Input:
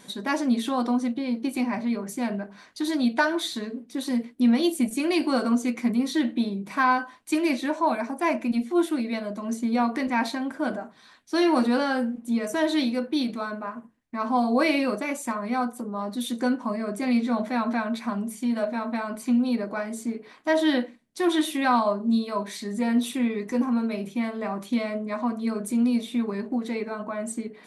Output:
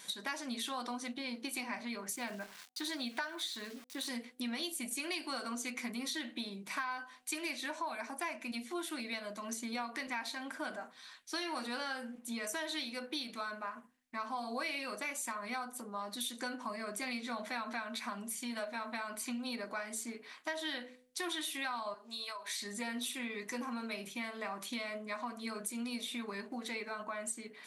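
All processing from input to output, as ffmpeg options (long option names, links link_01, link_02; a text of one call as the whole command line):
ffmpeg -i in.wav -filter_complex "[0:a]asettb=1/sr,asplit=3[link_01][link_02][link_03];[link_01]atrim=end=2.164[link_04];[link_02]atrim=start=2.16:end=4.07,asetpts=PTS-STARTPTS,afade=type=in:duration=0.004:curve=qsin,afade=type=out:start_time=1.906:duration=0.004:curve=qsin,highshelf=frequency=5800:gain=-5.5,aeval=exprs='val(0)*gte(abs(val(0)),0.00501)':channel_layout=same[link_05];[link_03]atrim=start=4.066[link_06];[link_04][link_05]acrossfade=duration=0.004:curve1=hsin:curve2=qsin[link_07];[link_07][link_06]acrossfade=duration=0.004:curve1=qsin:curve2=hsin,asettb=1/sr,asplit=3[link_08][link_09][link_10];[link_08]atrim=end=21.944[link_11];[link_09]atrim=start=21.94:end=22.61,asetpts=PTS-STARTPTS,afade=type=in:duration=0.004:curve=qsin,afade=type=out:start_time=0.666:duration=0.004:curve=qsin,highpass=610,acompressor=threshold=-34dB:ratio=12:attack=3.2:release=140:knee=1:detection=peak[link_12];[link_10]atrim=start=22.606[link_13];[link_11][link_12]acrossfade=duration=0.004:curve1=hsin:curve2=qsin[link_14];[link_14][link_13]acrossfade=duration=0.004:curve1=qsin:curve2=hsin,tiltshelf=frequency=790:gain=-9.5,bandreject=frequency=251.4:width_type=h:width=4,bandreject=frequency=502.8:width_type=h:width=4,bandreject=frequency=754.2:width_type=h:width=4,acompressor=threshold=-29dB:ratio=6,volume=-7dB" out.wav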